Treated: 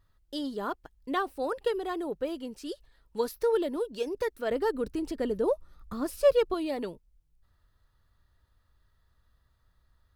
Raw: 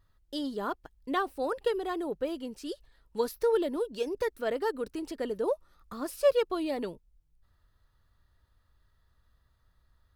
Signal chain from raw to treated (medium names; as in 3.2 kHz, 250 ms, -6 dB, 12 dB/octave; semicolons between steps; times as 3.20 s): 4.51–6.54 s: bass shelf 250 Hz +11 dB